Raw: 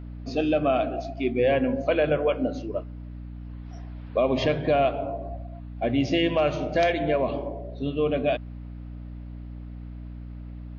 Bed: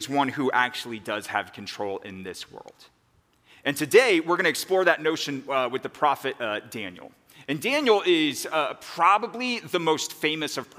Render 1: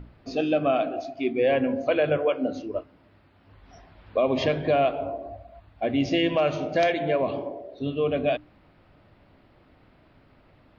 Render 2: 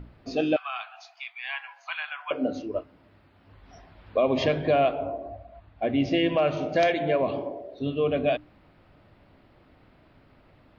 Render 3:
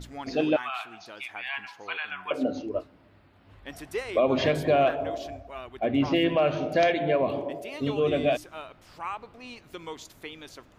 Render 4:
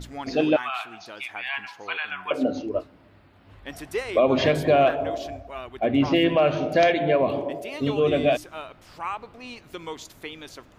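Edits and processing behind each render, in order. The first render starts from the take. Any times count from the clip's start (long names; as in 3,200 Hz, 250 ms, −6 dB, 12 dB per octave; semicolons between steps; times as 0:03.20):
mains-hum notches 60/120/180/240/300 Hz
0:00.56–0:02.31: Butterworth high-pass 840 Hz 72 dB per octave; 0:04.94–0:06.57: high-frequency loss of the air 110 metres
mix in bed −16 dB
level +3.5 dB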